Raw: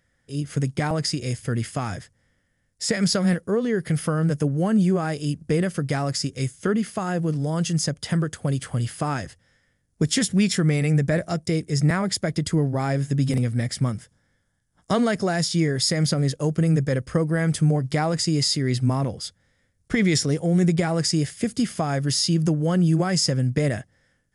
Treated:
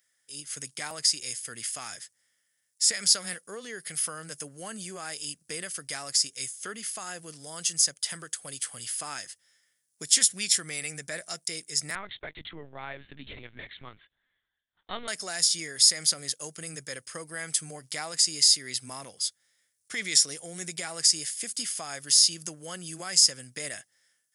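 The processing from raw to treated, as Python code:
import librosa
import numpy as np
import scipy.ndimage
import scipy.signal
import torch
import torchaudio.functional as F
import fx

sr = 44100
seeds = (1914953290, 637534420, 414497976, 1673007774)

y = np.diff(x, prepend=0.0)
y = fx.lpc_vocoder(y, sr, seeds[0], excitation='pitch_kept', order=10, at=(11.95, 15.08))
y = y * librosa.db_to_amplitude(6.0)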